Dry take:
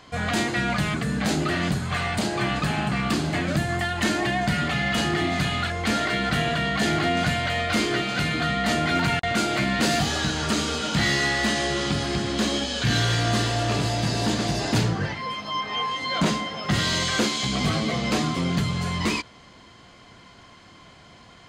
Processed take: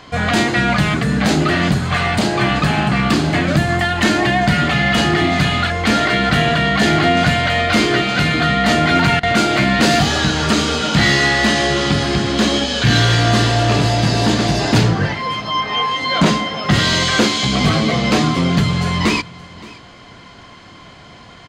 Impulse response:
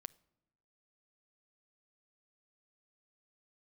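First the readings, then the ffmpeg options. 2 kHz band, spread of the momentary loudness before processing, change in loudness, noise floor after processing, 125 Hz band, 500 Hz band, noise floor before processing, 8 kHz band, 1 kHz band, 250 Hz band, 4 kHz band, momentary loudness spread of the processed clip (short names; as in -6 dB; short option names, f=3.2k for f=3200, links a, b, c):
+9.0 dB, 4 LU, +9.0 dB, -40 dBFS, +9.0 dB, +9.0 dB, -49 dBFS, +5.5 dB, +9.0 dB, +9.0 dB, +8.5 dB, 4 LU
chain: -filter_complex "[0:a]aecho=1:1:571:0.0891,asplit=2[a][b];[1:a]atrim=start_sample=2205,lowpass=6.9k[c];[b][c]afir=irnorm=-1:irlink=0,volume=2dB[d];[a][d]amix=inputs=2:normalize=0,volume=4.5dB"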